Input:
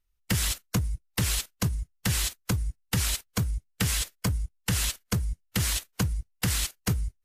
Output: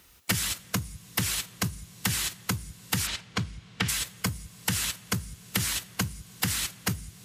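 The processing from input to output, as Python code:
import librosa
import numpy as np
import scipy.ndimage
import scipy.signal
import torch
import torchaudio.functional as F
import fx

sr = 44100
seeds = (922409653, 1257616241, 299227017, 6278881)

y = scipy.signal.sosfilt(scipy.signal.butter(2, 120.0, 'highpass', fs=sr, output='sos'), x)
y = fx.rev_double_slope(y, sr, seeds[0], early_s=0.42, late_s=3.8, knee_db=-18, drr_db=16.0)
y = fx.dynamic_eq(y, sr, hz=560.0, q=1.1, threshold_db=-49.0, ratio=4.0, max_db=-6)
y = fx.lowpass(y, sr, hz=fx.line((3.06, 4700.0), (3.88, 2100.0)), slope=12, at=(3.06, 3.88), fade=0.02)
y = fx.band_squash(y, sr, depth_pct=100)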